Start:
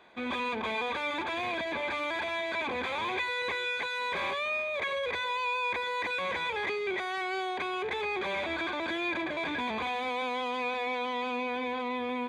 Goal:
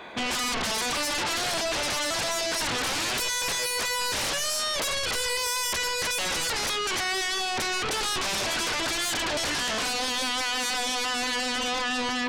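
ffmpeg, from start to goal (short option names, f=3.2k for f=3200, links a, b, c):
-af "aeval=exprs='0.0841*sin(PI/2*5.62*val(0)/0.0841)':c=same,volume=-3.5dB"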